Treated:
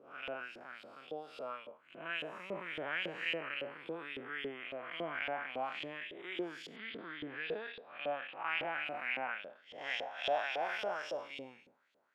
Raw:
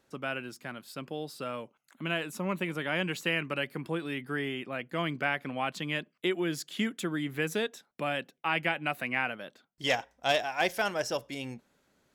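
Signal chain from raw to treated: time blur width 0.209 s; LFO band-pass saw up 3.6 Hz 460–3500 Hz; 6.76–8.48 steep low-pass 4900 Hz 96 dB/oct; gain +4.5 dB

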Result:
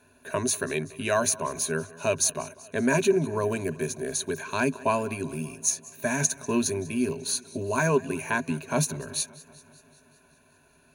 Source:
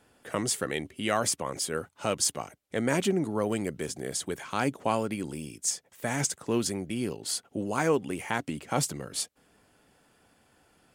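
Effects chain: ripple EQ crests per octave 1.5, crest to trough 16 dB; warbling echo 0.191 s, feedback 66%, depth 62 cents, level -21 dB

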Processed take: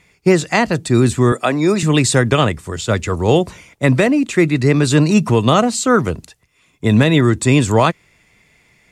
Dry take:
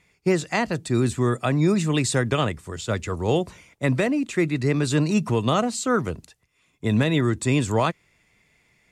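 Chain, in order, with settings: 1.32–1.83 HPF 270 Hz 12 dB/oct; gain +8.5 dB

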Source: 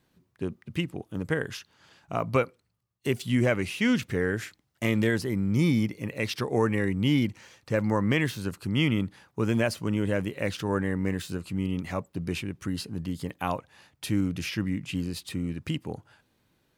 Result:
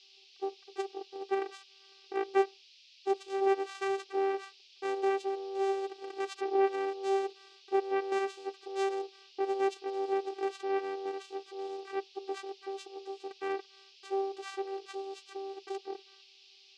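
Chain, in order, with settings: low-pass opened by the level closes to 2400 Hz; vocoder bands 4, saw 390 Hz; band noise 2500–5300 Hz -54 dBFS; gain -5.5 dB

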